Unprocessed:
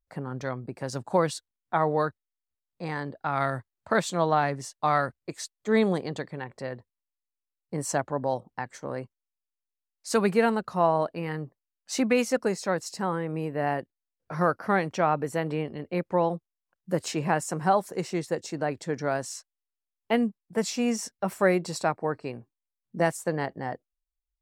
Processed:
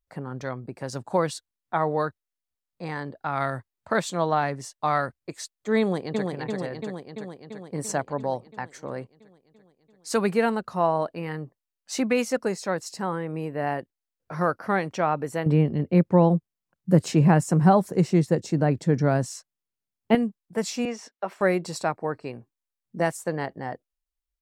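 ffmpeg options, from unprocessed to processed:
ffmpeg -i in.wav -filter_complex "[0:a]asplit=2[link_01][link_02];[link_02]afade=type=in:start_time=5.8:duration=0.01,afade=type=out:start_time=6.25:duration=0.01,aecho=0:1:340|680|1020|1360|1700|2040|2380|2720|3060|3400|3740|4080:0.707946|0.495562|0.346893|0.242825|0.169978|0.118984|0.0832891|0.0583024|0.0408117|0.0285682|0.0199977|0.0139984[link_03];[link_01][link_03]amix=inputs=2:normalize=0,asettb=1/sr,asplit=3[link_04][link_05][link_06];[link_04]atrim=end=15.464[link_07];[link_05]atrim=start=15.46:end=20.15,asetpts=PTS-STARTPTS,afade=type=in:duration=0.004:curve=qsin,afade=type=out:start_time=4.686:duration=0.004:curve=qsin,equalizer=frequency=140:width=0.49:gain=14.5[link_08];[link_06]atrim=start=20.146[link_09];[link_07][link_08]acrossfade=duration=0.004:curve1=hsin:curve2=qsin[link_10];[link_10][link_09]acrossfade=duration=0.004:curve1=qsin:curve2=hsin,asettb=1/sr,asplit=3[link_11][link_12][link_13];[link_11]atrim=end=20.854[link_14];[link_12]atrim=start=20.85:end=21.41,asetpts=PTS-STARTPTS,afade=type=in:duration=0.004:curve=qsin,afade=type=out:start_time=0.556:duration=0.004:curve=qsin,acrossover=split=270 4900:gain=0.0708 1 0.112[link_15][link_16][link_17];[link_15][link_16][link_17]amix=inputs=3:normalize=0[link_18];[link_13]atrim=start=21.406[link_19];[link_14][link_18]acrossfade=duration=0.004:curve1=hsin:curve2=qsin[link_20];[link_20][link_19]acrossfade=duration=0.004:curve1=qsin:curve2=hsin" out.wav

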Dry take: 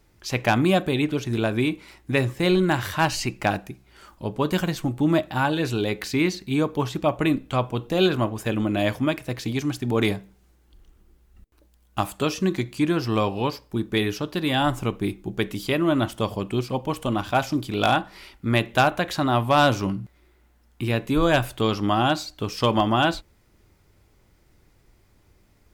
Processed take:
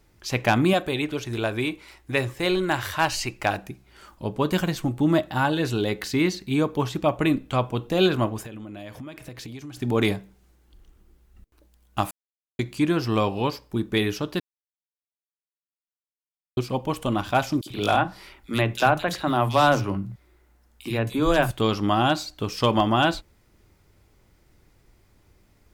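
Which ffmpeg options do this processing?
ffmpeg -i in.wav -filter_complex "[0:a]asettb=1/sr,asplit=3[link_01][link_02][link_03];[link_01]atrim=end=0.734[link_04];[link_02]atrim=start=0.73:end=3.58,asetpts=PTS-STARTPTS,afade=type=in:duration=0.004:curve=qsin,afade=type=out:start_time=2.846:duration=0.004:curve=qsin,equalizer=frequency=190:width_type=o:width=1.4:gain=-8.5[link_05];[link_03]atrim=start=3.576[link_06];[link_04][link_05]acrossfade=duration=0.004:curve1=hsin:curve2=qsin[link_07];[link_07][link_06]acrossfade=duration=0.004:curve1=qsin:curve2=hsin,asettb=1/sr,asplit=3[link_08][link_09][link_10];[link_08]atrim=end=5.014[link_11];[link_09]atrim=start=5.01:end=6.37,asetpts=PTS-STARTPTS,afade=type=in:duration=0.004:curve=qsin,afade=type=out:start_time=1.356:duration=0.004:curve=qsin,bandreject=frequency=2400:width=12[link_12];[link_10]atrim=start=6.366[link_13];[link_11][link_12]acrossfade=duration=0.004:curve1=hsin:curve2=qsin[link_14];[link_14][link_13]acrossfade=duration=0.004:curve1=qsin:curve2=hsin,asettb=1/sr,asplit=3[link_15][link_16][link_17];[link_15]atrim=end=8.424[link_18];[link_16]atrim=start=8.42:end=9.77,asetpts=PTS-STARTPTS,afade=type=in:duration=0.004:curve=qsin,afade=type=out:start_time=1.346:duration=0.004:curve=qsin,acompressor=threshold=-34dB:ratio=16:attack=3.2:release=140:knee=1:detection=peak[link_19];[link_17]atrim=start=9.766[link_20];[link_18][link_19]acrossfade=duration=0.004:curve1=hsin:curve2=qsin[link_21];[link_21][link_20]acrossfade=duration=0.004:curve1=qsin:curve2=hsin,asettb=1/sr,asplit=3[link_22][link_23][link_24];[link_22]atrim=end=17.614[link_25];[link_23]atrim=start=17.61:end=21.51,asetpts=PTS-STARTPTS,afade=type=in:duration=0.004:curve=qsin,afade=type=out:start_time=3.896:duration=0.004:curve=qsin,acrossover=split=190|2900[link_26][link_27][link_28];[link_27]adelay=50[link_29];[link_26]adelay=90[link_30];[link_30][link_29][link_28]amix=inputs=3:normalize=0,atrim=end_sample=171990[link_31];[link_24]atrim=start=21.506[link_32];[link_25][link_31]acrossfade=duration=0.004:curve1=hsin:curve2=qsin[link_33];[link_33][link_32]acrossfade=duration=0.004:curve1=qsin:curve2=hsin,asplit=5[link_34][link_35][link_36][link_37][link_38];[link_34]atrim=end=12.11,asetpts=PTS-STARTPTS,afade=type=out:start_time=12.106:duration=0.004:curve=hsin[link_39];[link_35]atrim=start=12.11:end=12.59,asetpts=PTS-STARTPTS,volume=0[link_40];[link_36]atrim=start=12.59:end=14.4,asetpts=PTS-STARTPTS,afade=type=in:duration=0.004:curve=hsin,afade=type=out:start_time=1.806:duration=0.004:curve=hsin[link_41];[link_37]atrim=start=14.4:end=16.57,asetpts=PTS-STARTPTS,volume=0[link_42];[link_38]atrim=start=16.57,asetpts=PTS-STARTPTS,afade=type=in:duration=0.004:curve=hsin[link_43];[link_39][link_40][link_41][link_42][link_43]concat=n=5:v=0:a=1" out.wav

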